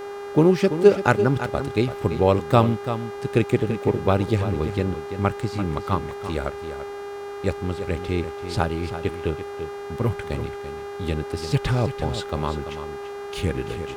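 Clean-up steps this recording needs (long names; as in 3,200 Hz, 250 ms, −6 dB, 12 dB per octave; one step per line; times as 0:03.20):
hum removal 404 Hz, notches 39
noise reduction from a noise print 30 dB
echo removal 338 ms −10.5 dB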